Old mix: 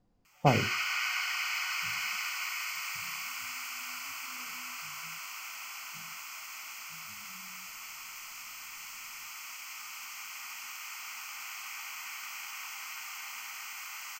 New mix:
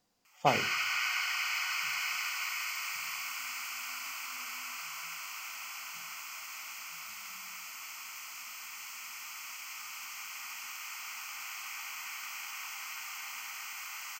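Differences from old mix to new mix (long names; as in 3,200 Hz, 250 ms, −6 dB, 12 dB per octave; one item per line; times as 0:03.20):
speech: add spectral tilt +4.5 dB per octave
reverb: on, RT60 0.70 s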